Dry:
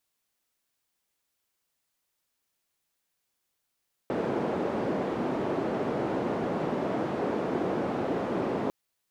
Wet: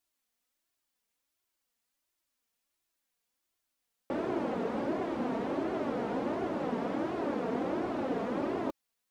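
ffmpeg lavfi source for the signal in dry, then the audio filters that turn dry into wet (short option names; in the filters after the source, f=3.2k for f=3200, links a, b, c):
-f lavfi -i "anoisesrc=c=white:d=4.6:r=44100:seed=1,highpass=f=210,lowpass=f=460,volume=-5.9dB"
-af "flanger=delay=2.7:depth=1.8:regen=19:speed=1.4:shape=triangular"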